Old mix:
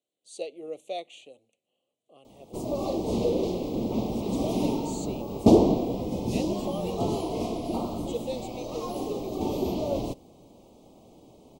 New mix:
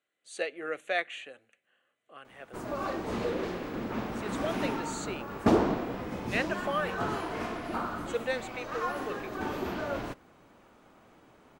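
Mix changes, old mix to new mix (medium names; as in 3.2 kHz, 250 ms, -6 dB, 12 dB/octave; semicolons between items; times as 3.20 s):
background -7.0 dB; master: remove Butterworth band-stop 1.6 kHz, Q 0.58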